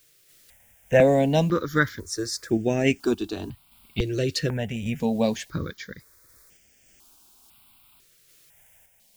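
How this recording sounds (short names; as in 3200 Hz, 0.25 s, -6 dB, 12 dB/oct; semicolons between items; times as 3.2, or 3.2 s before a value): a quantiser's noise floor 10-bit, dither triangular; random-step tremolo; notches that jump at a steady rate 2 Hz 230–4000 Hz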